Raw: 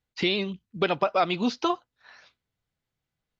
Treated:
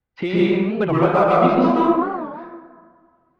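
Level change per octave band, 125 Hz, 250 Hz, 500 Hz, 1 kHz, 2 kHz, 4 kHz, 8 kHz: +14.0 dB, +12.5 dB, +10.5 dB, +9.5 dB, +4.0 dB, -5.0 dB, no reading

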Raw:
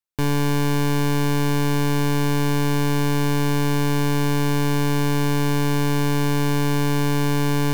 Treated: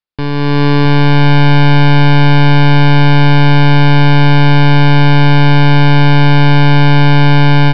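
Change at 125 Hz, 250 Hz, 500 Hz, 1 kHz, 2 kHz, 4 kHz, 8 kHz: +14.5 dB, +10.5 dB, +8.0 dB, +13.5 dB, +14.5 dB, +13.0 dB, under -10 dB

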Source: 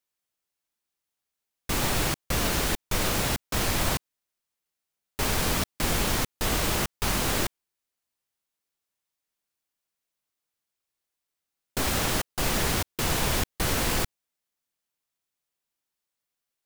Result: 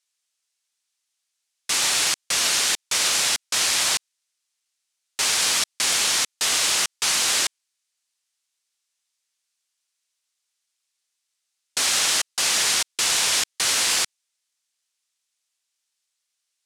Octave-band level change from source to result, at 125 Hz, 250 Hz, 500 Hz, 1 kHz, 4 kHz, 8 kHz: -18.5 dB, -11.5 dB, -5.5 dB, 0.0 dB, +10.5 dB, +11.0 dB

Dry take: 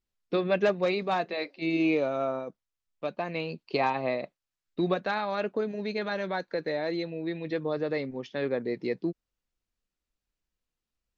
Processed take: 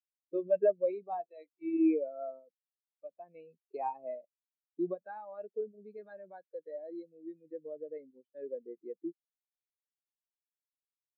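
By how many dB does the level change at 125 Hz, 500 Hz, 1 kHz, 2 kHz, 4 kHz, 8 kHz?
-23.0 dB, -6.5 dB, -10.0 dB, -23.5 dB, under -35 dB, no reading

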